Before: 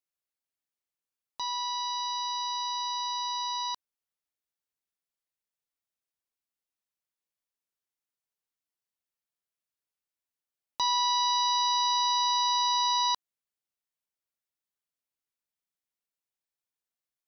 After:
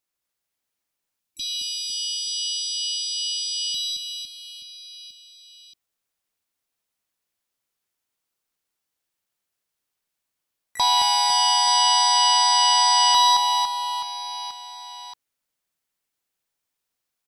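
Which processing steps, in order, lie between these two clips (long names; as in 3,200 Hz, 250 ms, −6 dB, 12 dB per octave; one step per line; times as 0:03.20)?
pitch-shifted copies added −5 semitones −11 dB, −3 semitones −10 dB, +12 semitones −16 dB
time-frequency box erased 0:01.20–0:03.92, 330–2,300 Hz
reverse bouncing-ball delay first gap 220 ms, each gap 1.3×, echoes 5
level +7 dB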